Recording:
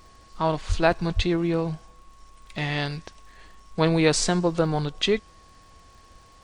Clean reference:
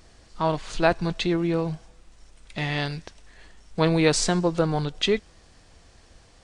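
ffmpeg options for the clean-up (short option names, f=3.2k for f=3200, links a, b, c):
-filter_complex "[0:a]adeclick=t=4,bandreject=f=1.1k:w=30,asplit=3[a][b][c];[a]afade=t=out:st=0.68:d=0.02[d];[b]highpass=f=140:w=0.5412,highpass=f=140:w=1.3066,afade=t=in:st=0.68:d=0.02,afade=t=out:st=0.8:d=0.02[e];[c]afade=t=in:st=0.8:d=0.02[f];[d][e][f]amix=inputs=3:normalize=0,asplit=3[g][h][i];[g]afade=t=out:st=1.15:d=0.02[j];[h]highpass=f=140:w=0.5412,highpass=f=140:w=1.3066,afade=t=in:st=1.15:d=0.02,afade=t=out:st=1.27:d=0.02[k];[i]afade=t=in:st=1.27:d=0.02[l];[j][k][l]amix=inputs=3:normalize=0"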